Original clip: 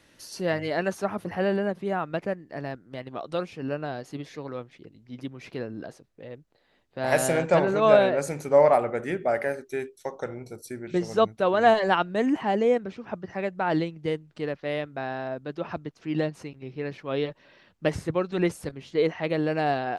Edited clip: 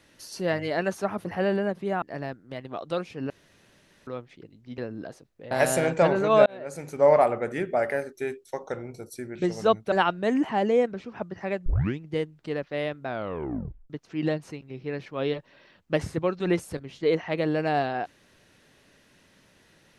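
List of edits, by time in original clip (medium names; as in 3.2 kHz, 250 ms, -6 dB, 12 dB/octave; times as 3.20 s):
2.02–2.44 s: delete
3.72–4.49 s: room tone
5.20–5.57 s: delete
6.30–7.03 s: delete
7.98–8.64 s: fade in
11.44–11.84 s: delete
13.58 s: tape start 0.34 s
14.98 s: tape stop 0.84 s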